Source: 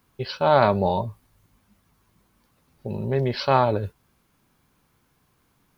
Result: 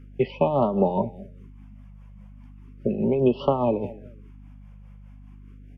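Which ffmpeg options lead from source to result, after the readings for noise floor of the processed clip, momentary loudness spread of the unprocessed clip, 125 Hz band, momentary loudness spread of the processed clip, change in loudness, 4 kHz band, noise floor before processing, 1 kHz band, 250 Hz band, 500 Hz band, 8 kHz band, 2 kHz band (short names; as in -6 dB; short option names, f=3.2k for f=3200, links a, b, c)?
-46 dBFS, 17 LU, -3.0 dB, 10 LU, -1.5 dB, -11.0 dB, -67 dBFS, -6.0 dB, +4.5 dB, 0.0 dB, n/a, -13.0 dB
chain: -filter_complex "[0:a]highpass=f=200:w=0.5412,highpass=f=200:w=1.3066,acrossover=split=510|2800[a][b][c];[b]aexciter=amount=3.8:drive=4.7:freq=2.2k[d];[a][d][c]amix=inputs=3:normalize=0,aecho=1:1:215|430:0.0631|0.0151,acrossover=split=270|3900[e][f][g];[e]acompressor=threshold=-45dB:ratio=4[h];[f]acompressor=threshold=-25dB:ratio=4[i];[g]acompressor=threshold=-55dB:ratio=4[j];[h][i][j]amix=inputs=3:normalize=0,lowshelf=f=320:g=7.5,tremolo=f=4.9:d=0.59,aemphasis=mode=reproduction:type=riaa,aeval=exprs='val(0)+0.00398*(sin(2*PI*50*n/s)+sin(2*PI*2*50*n/s)/2+sin(2*PI*3*50*n/s)/3+sin(2*PI*4*50*n/s)/4+sin(2*PI*5*50*n/s)/5)':c=same,afftfilt=real='re*(1-between(b*sr/1024,320*pow(1900/320,0.5+0.5*sin(2*PI*0.36*pts/sr))/1.41,320*pow(1900/320,0.5+0.5*sin(2*PI*0.36*pts/sr))*1.41))':imag='im*(1-between(b*sr/1024,320*pow(1900/320,0.5+0.5*sin(2*PI*0.36*pts/sr))/1.41,320*pow(1900/320,0.5+0.5*sin(2*PI*0.36*pts/sr))*1.41))':win_size=1024:overlap=0.75,volume=4dB"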